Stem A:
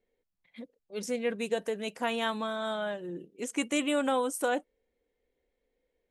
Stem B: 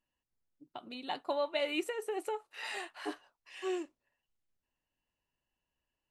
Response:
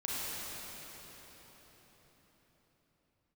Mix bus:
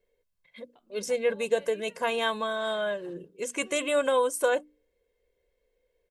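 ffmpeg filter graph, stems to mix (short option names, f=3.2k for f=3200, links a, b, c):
-filter_complex "[0:a]bandreject=f=60:t=h:w=6,bandreject=f=120:t=h:w=6,bandreject=f=180:t=h:w=6,bandreject=f=240:t=h:w=6,bandreject=f=300:t=h:w=6,aecho=1:1:1.9:0.61,volume=2dB[a];[1:a]volume=-17dB[b];[a][b]amix=inputs=2:normalize=0"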